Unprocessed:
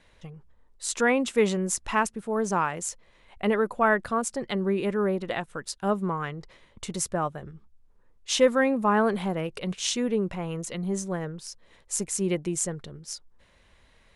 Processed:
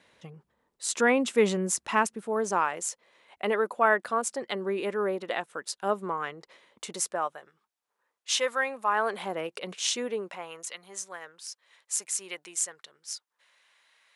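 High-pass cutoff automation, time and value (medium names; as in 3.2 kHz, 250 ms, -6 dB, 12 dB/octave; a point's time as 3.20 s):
1.91 s 170 Hz
2.64 s 370 Hz
6.89 s 370 Hz
7.51 s 850 Hz
8.88 s 850 Hz
9.35 s 390 Hz
9.96 s 390 Hz
10.79 s 1.1 kHz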